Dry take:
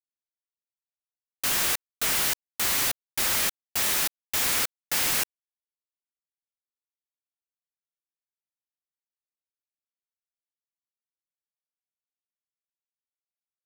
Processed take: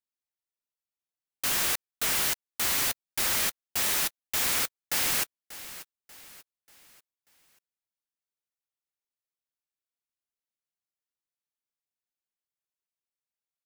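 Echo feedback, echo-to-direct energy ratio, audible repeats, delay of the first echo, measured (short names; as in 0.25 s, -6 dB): 42%, -15.0 dB, 3, 0.588 s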